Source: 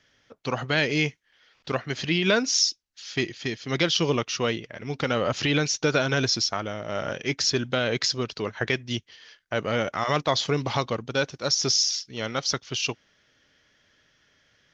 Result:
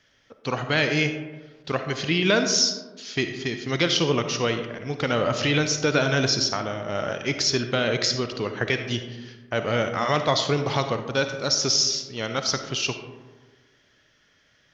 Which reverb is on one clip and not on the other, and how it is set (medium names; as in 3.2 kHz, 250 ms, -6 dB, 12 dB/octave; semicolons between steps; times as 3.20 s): algorithmic reverb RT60 1.4 s, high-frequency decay 0.35×, pre-delay 15 ms, DRR 7 dB; trim +1 dB